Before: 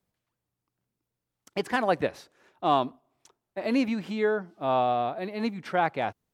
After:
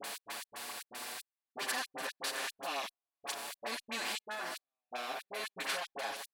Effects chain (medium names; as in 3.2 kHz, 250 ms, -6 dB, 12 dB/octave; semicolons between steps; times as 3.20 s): spectral levelling over time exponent 0.4; in parallel at 0 dB: compression, threshold -32 dBFS, peak gain reduction 16.5 dB; on the sum: saturation -15 dBFS, distortion -12 dB; peak limiter -24 dBFS, peak gain reduction 9 dB; differentiator; on a send: repeats whose band climbs or falls 160 ms, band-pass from 650 Hz, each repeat 1.4 oct, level -9 dB; on the sum: trance gate "x.x.xx.xx...x" 116 bpm -60 dB; phase dispersion highs, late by 42 ms, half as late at 1.3 kHz; endless flanger 6.8 ms +0.32 Hz; trim +13 dB